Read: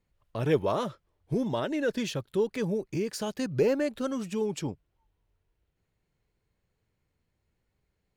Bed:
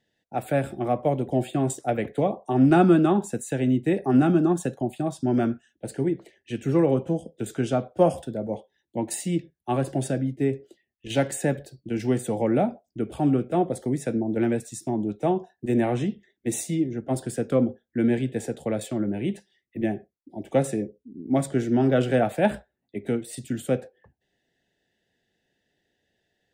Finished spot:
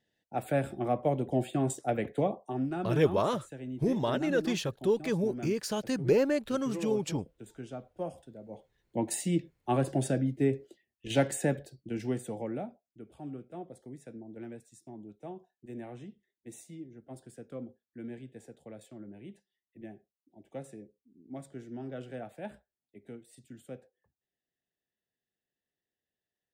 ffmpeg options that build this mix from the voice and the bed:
-filter_complex "[0:a]adelay=2500,volume=1[s0];[1:a]volume=2.99,afade=t=out:st=2.22:d=0.48:silence=0.237137,afade=t=in:st=8.48:d=0.52:silence=0.188365,afade=t=out:st=11.2:d=1.59:silence=0.141254[s1];[s0][s1]amix=inputs=2:normalize=0"

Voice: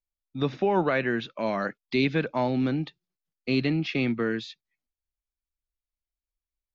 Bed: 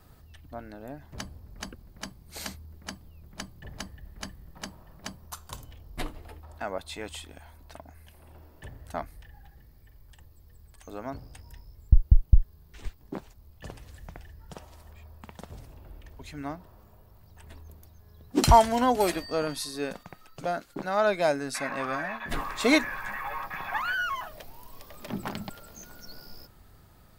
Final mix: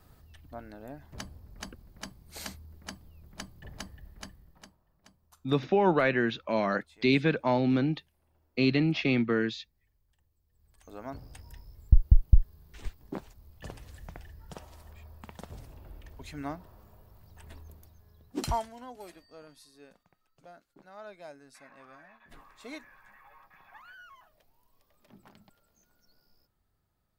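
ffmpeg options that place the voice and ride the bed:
-filter_complex "[0:a]adelay=5100,volume=1[s0];[1:a]volume=6.31,afade=t=out:st=4:d=0.78:silence=0.141254,afade=t=in:st=10.51:d=0.83:silence=0.112202,afade=t=out:st=17.56:d=1.17:silence=0.0891251[s1];[s0][s1]amix=inputs=2:normalize=0"

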